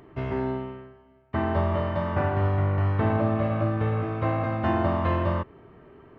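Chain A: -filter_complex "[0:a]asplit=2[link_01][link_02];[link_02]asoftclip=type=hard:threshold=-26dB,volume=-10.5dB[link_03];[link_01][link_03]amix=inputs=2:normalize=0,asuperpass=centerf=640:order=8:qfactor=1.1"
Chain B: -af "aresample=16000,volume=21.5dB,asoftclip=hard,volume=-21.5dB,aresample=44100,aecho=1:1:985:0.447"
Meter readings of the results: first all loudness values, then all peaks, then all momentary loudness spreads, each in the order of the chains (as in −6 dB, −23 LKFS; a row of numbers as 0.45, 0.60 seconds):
−30.5, −27.5 LKFS; −16.0, −18.0 dBFS; 8, 8 LU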